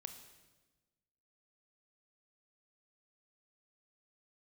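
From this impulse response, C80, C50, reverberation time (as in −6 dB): 10.5 dB, 9.0 dB, 1.2 s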